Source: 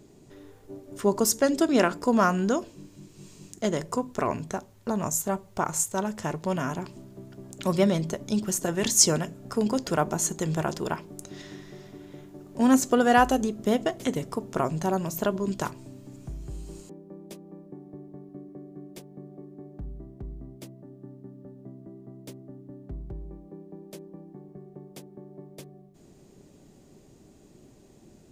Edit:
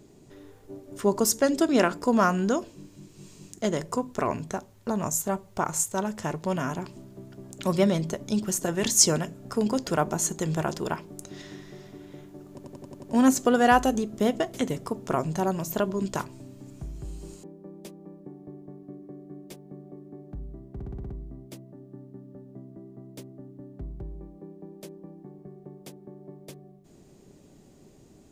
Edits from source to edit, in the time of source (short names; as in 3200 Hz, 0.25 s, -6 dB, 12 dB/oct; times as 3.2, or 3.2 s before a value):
12.49 stutter 0.09 s, 7 plays
20.2 stutter 0.06 s, 7 plays